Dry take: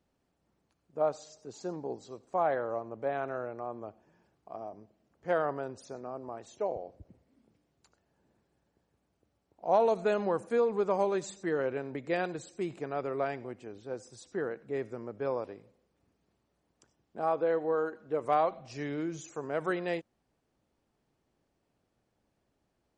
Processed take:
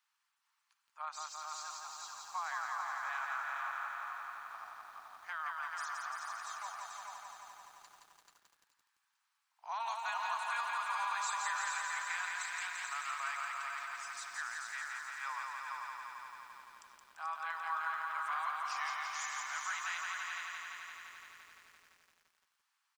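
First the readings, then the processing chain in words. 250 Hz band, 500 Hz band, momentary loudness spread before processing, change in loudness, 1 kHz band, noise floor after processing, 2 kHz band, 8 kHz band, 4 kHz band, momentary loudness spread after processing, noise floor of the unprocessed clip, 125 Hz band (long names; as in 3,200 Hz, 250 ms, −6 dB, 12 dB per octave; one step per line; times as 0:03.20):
below −40 dB, −28.5 dB, 15 LU, −6.5 dB, −2.0 dB, −82 dBFS, +5.5 dB, +8.0 dB, +6.5 dB, 15 LU, −78 dBFS, below −35 dB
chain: Butterworth high-pass 990 Hz 48 dB per octave
brickwall limiter −34.5 dBFS, peak gain reduction 10 dB
repeating echo 436 ms, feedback 23%, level −4 dB
feedback echo at a low word length 171 ms, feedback 80%, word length 12 bits, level −3 dB
level +3.5 dB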